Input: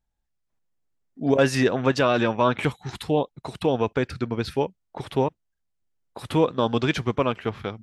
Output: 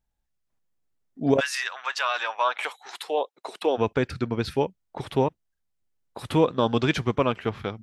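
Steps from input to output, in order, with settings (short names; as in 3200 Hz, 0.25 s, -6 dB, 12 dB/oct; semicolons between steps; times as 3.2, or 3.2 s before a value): 1.39–3.77 HPF 1300 Hz -> 320 Hz 24 dB/oct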